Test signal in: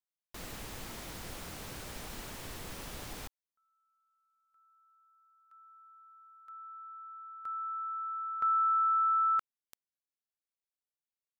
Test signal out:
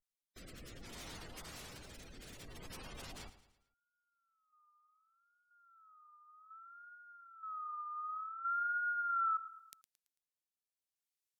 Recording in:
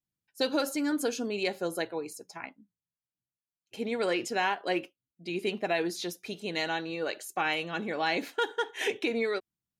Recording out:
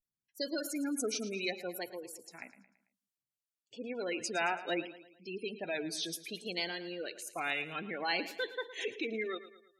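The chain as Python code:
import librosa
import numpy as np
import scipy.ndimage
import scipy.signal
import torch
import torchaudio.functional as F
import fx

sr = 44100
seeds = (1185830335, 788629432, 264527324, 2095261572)

y = fx.spec_gate(x, sr, threshold_db=-20, keep='strong')
y = fx.high_shelf(y, sr, hz=2500.0, db=10.0)
y = fx.wow_flutter(y, sr, seeds[0], rate_hz=0.58, depth_cents=140.0)
y = fx.rotary(y, sr, hz=0.6)
y = fx.echo_feedback(y, sr, ms=111, feedback_pct=45, wet_db=-14.5)
y = F.gain(torch.from_numpy(y), -5.5).numpy()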